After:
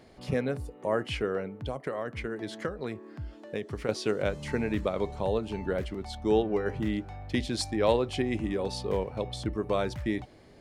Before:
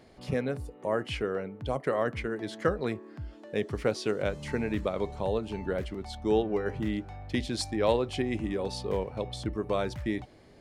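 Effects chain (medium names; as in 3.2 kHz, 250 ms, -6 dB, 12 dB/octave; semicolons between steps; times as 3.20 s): 1.55–3.89 s: compression 6:1, threshold -31 dBFS, peak gain reduction 10.5 dB; trim +1 dB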